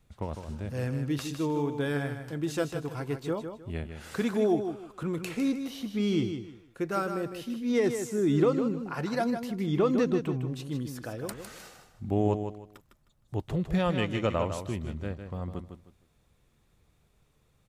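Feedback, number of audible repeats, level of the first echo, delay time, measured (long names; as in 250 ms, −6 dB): 26%, 3, −8.0 dB, 155 ms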